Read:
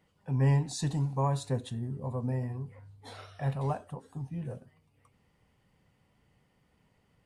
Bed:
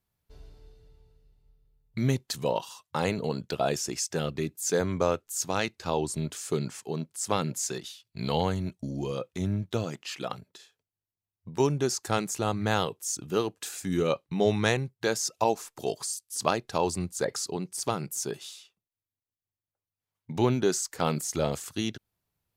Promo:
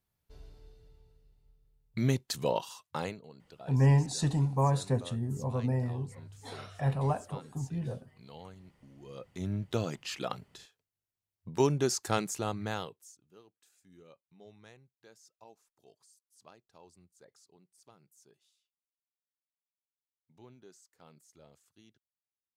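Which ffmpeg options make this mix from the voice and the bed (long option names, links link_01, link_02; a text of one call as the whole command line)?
ffmpeg -i stem1.wav -i stem2.wav -filter_complex "[0:a]adelay=3400,volume=2dB[link_01];[1:a]volume=18.5dB,afade=type=out:start_time=2.82:duration=0.39:silence=0.1,afade=type=in:start_time=9:duration=0.81:silence=0.0944061,afade=type=out:start_time=12.03:duration=1.13:silence=0.0354813[link_02];[link_01][link_02]amix=inputs=2:normalize=0" out.wav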